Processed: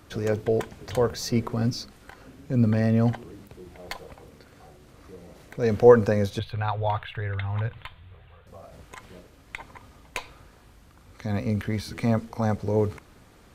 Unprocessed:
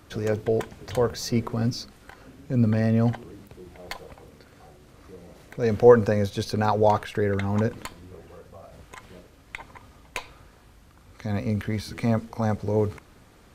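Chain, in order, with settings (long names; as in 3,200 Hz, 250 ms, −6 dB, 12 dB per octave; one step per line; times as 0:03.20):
0:06.39–0:08.47: drawn EQ curve 140 Hz 0 dB, 200 Hz −19 dB, 340 Hz −19 dB, 480 Hz −13 dB, 710 Hz −6 dB, 3,600 Hz +1 dB, 5,300 Hz −28 dB, 12,000 Hz −17 dB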